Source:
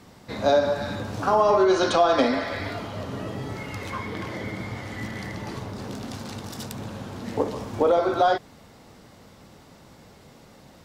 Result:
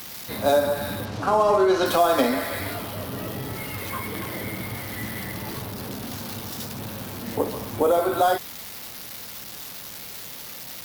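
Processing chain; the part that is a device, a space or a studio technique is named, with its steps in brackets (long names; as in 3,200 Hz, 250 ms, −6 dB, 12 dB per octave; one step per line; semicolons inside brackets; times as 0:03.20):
budget class-D amplifier (gap after every zero crossing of 0.062 ms; spike at every zero crossing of −22 dBFS)
0:01.05–0:01.86: low-pass filter 6,100 Hz 12 dB per octave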